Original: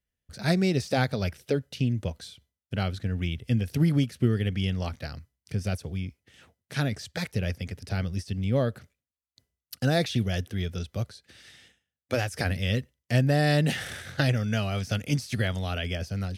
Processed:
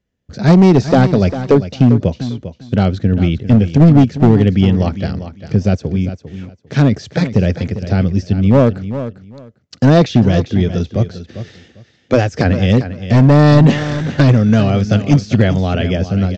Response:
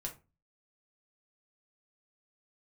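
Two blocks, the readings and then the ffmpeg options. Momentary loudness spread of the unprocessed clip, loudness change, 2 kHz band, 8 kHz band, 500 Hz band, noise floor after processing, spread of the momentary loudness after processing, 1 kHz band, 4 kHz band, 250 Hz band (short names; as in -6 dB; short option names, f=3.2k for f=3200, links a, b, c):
11 LU, +15.0 dB, +8.0 dB, n/a, +15.0 dB, -53 dBFS, 14 LU, +14.0 dB, +6.5 dB, +17.5 dB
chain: -af "equalizer=f=270:w=0.35:g=13.5,aresample=16000,asoftclip=type=hard:threshold=-9.5dB,aresample=44100,aecho=1:1:399|798:0.251|0.0477,volume=6dB"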